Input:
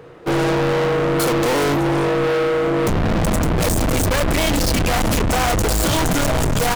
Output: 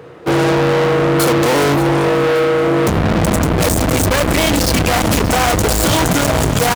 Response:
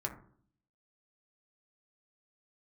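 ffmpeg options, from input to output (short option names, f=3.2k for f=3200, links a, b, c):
-filter_complex "[0:a]highpass=56,asplit=2[a][b];[b]aecho=0:1:578|1156|1734|2312|2890:0.158|0.0856|0.0462|0.025|0.0135[c];[a][c]amix=inputs=2:normalize=0,volume=4.5dB"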